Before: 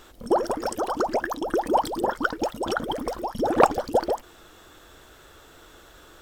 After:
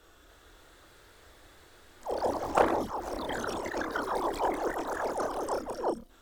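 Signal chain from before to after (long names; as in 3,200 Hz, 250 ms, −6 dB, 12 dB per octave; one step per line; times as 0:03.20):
played backwards from end to start
multi-voice chorus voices 4, 0.44 Hz, delay 29 ms, depth 2.2 ms
delay with pitch and tempo change per echo 287 ms, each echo +2 semitones, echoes 3
level −6 dB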